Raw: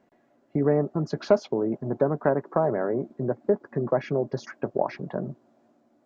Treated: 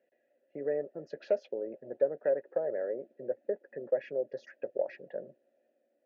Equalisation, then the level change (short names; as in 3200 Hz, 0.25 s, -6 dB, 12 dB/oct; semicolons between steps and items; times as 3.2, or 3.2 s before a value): vowel filter e; high shelf 2900 Hz +7 dB; 0.0 dB